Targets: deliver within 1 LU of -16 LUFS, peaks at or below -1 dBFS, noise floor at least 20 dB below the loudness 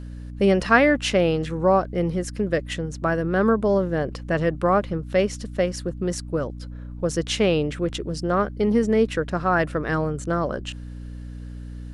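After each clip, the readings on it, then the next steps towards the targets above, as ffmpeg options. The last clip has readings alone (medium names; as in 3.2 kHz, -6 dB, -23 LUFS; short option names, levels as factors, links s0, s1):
hum 60 Hz; highest harmonic 300 Hz; hum level -33 dBFS; loudness -23.0 LUFS; peak level -2.5 dBFS; loudness target -16.0 LUFS
-> -af "bandreject=f=60:t=h:w=6,bandreject=f=120:t=h:w=6,bandreject=f=180:t=h:w=6,bandreject=f=240:t=h:w=6,bandreject=f=300:t=h:w=6"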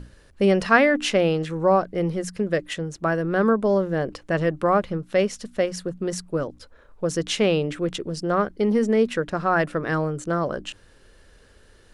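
hum not found; loudness -23.0 LUFS; peak level -3.0 dBFS; loudness target -16.0 LUFS
-> -af "volume=2.24,alimiter=limit=0.891:level=0:latency=1"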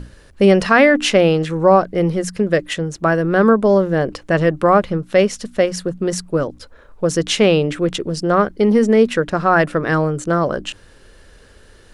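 loudness -16.5 LUFS; peak level -1.0 dBFS; noise floor -46 dBFS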